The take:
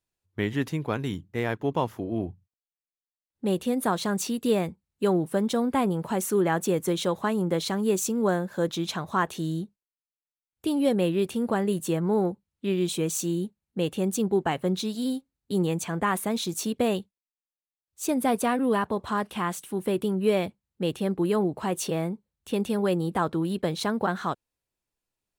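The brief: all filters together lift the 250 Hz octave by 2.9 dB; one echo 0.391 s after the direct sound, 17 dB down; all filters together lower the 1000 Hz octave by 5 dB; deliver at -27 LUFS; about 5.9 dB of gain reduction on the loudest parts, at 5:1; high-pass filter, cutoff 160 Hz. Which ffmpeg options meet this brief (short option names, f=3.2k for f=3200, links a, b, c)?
-af "highpass=160,equalizer=f=250:t=o:g=5.5,equalizer=f=1k:t=o:g=-7,acompressor=threshold=-24dB:ratio=5,aecho=1:1:391:0.141,volume=2.5dB"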